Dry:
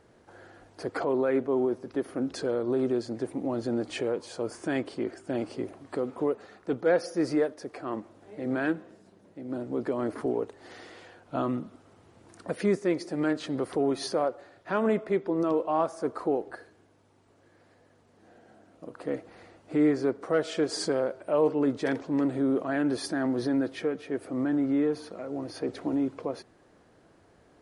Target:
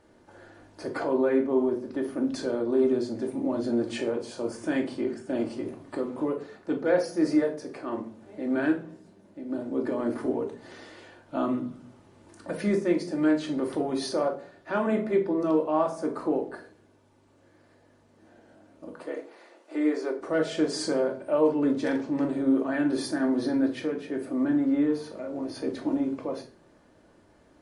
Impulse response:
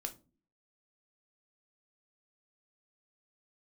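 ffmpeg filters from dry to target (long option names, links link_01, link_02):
-filter_complex "[0:a]asettb=1/sr,asplit=3[link_01][link_02][link_03];[link_01]atrim=end=18.934[link_04];[link_02]atrim=start=18.93:end=20.19,asetpts=PTS-STARTPTS,afade=type=in:duration=0.004:curve=qsin,afade=type=out:start_time=1.256:duration=0.004:curve=qsin,highpass=frequency=350:width=0.5412,highpass=frequency=350:width=1.3066[link_05];[link_03]atrim=start=20.186[link_06];[link_04][link_05]acrossfade=duration=0.004:curve1=hsin:curve2=qsin[link_07];[link_07][link_06]acrossfade=duration=0.004:curve1=qsin:curve2=hsin[link_08];[1:a]atrim=start_sample=2205,asetrate=30870,aresample=44100[link_09];[link_08][link_09]afir=irnorm=-1:irlink=0"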